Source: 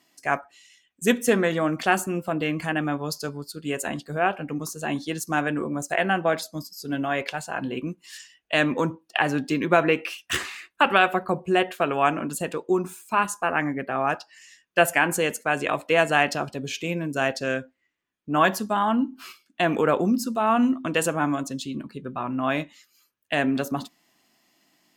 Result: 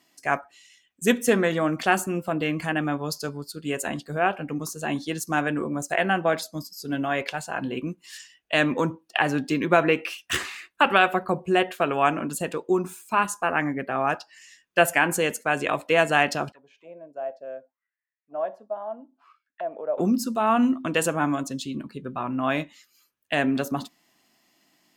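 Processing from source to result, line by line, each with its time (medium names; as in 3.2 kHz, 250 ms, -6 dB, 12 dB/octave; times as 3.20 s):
16.52–19.98 s: auto-wah 620–2000 Hz, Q 7.6, down, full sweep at -25 dBFS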